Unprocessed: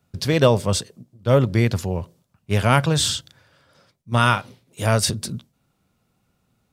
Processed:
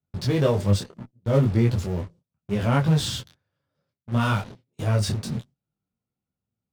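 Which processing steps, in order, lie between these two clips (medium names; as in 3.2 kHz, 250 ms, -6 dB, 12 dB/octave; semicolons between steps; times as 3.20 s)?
Bessel low-pass 6.1 kHz; gate -46 dBFS, range -14 dB; high-pass 45 Hz 6 dB/octave; bass shelf 500 Hz +9.5 dB; in parallel at -9 dB: fuzz box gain 39 dB, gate -35 dBFS; on the sum: detune thickener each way 24 cents; trim -7.5 dB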